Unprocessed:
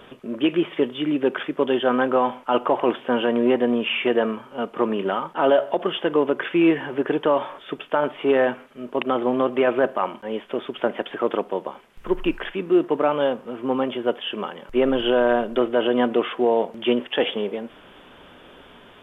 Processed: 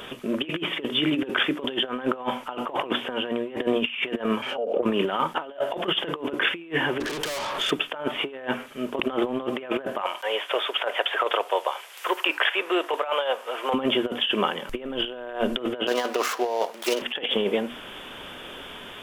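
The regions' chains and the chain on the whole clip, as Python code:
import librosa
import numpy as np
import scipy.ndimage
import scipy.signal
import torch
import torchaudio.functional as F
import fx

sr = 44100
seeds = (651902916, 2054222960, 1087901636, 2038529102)

y = fx.chain(x, sr, fx.band_shelf(hz=1400.0, db=-15.0, octaves=1.3),
    fx.auto_wah(base_hz=530.0, top_hz=2300.0, q=5.2, full_db=-30.5, direction='down'),
    fx.pre_swell(db_per_s=62.0), at=(4.42, 4.83))
y = fx.chain(y, sr, fx.tube_stage(drive_db=36.0, bias=0.35),
    fx.env_flatten(amount_pct=100), at=(7.0, 7.71))
y = fx.chain(y, sr, fx.highpass(hz=540.0, slope=24),
    fx.band_squash(depth_pct=40), at=(10.01, 13.74))
y = fx.chain(y, sr, fx.median_filter(points=15),
    fx.highpass(hz=600.0, slope=12), at=(15.87, 17.02))
y = fx.high_shelf(y, sr, hz=2500.0, db=11.5)
y = fx.hum_notches(y, sr, base_hz=60, count=5)
y = fx.over_compress(y, sr, threshold_db=-25.0, ratio=-0.5)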